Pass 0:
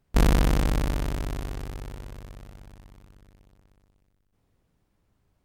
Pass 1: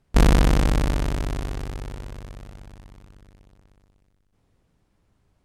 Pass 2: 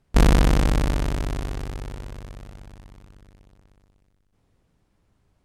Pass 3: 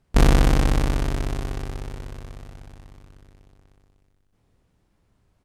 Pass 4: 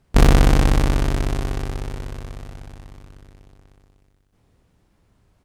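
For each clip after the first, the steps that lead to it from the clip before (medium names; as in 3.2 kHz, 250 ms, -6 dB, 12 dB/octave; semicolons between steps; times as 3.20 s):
low-pass 11 kHz 12 dB/octave; trim +4 dB
no audible change
doubling 28 ms -9.5 dB
single-diode clipper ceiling -13 dBFS; trim +5 dB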